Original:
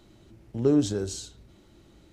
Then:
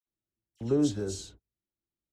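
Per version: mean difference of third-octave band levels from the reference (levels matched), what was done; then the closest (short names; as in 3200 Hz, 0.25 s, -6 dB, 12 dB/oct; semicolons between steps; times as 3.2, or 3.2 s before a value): 7.0 dB: gate -44 dBFS, range -37 dB; dispersion lows, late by 63 ms, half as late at 2200 Hz; gain -4 dB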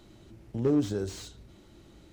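3.5 dB: in parallel at -0.5 dB: compressor, threshold -34 dBFS, peak gain reduction 16 dB; on the sum: slew limiter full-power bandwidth 62 Hz; gain -4.5 dB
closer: second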